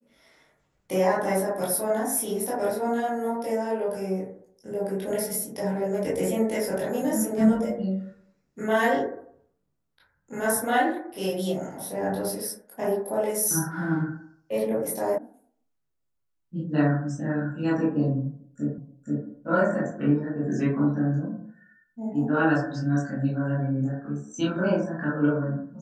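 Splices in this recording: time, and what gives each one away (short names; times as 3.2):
15.18 sound cut off
18.78 repeat of the last 0.48 s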